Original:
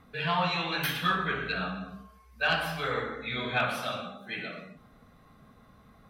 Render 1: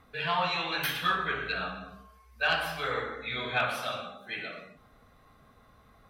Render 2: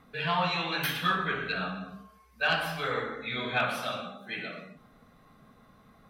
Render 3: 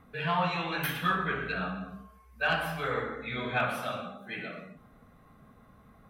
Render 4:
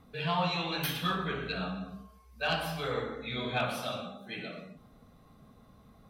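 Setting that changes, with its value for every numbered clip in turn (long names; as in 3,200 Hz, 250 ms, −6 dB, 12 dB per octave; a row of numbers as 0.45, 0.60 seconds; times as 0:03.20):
parametric band, centre frequency: 190, 65, 4,500, 1,700 Hertz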